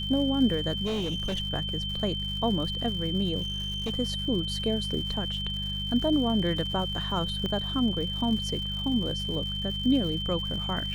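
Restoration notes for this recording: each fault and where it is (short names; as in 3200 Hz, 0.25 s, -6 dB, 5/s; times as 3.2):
crackle 180/s -37 dBFS
hum 50 Hz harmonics 4 -35 dBFS
tone 3100 Hz -32 dBFS
0.85–1.4 clipped -26 dBFS
3.41–3.9 clipped -27 dBFS
7.46 pop -20 dBFS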